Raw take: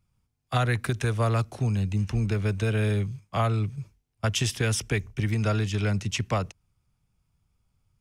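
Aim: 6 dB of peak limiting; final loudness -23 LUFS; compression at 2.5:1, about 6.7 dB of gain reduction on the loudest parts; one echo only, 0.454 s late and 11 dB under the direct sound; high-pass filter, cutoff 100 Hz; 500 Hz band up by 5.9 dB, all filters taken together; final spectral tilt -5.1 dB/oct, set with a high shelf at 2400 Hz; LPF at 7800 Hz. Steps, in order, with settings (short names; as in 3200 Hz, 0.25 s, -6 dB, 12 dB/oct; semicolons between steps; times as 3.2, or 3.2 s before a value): HPF 100 Hz; LPF 7800 Hz; bell 500 Hz +7 dB; high shelf 2400 Hz +5 dB; compressor 2.5:1, threshold -28 dBFS; limiter -21 dBFS; echo 0.454 s -11 dB; gain +9.5 dB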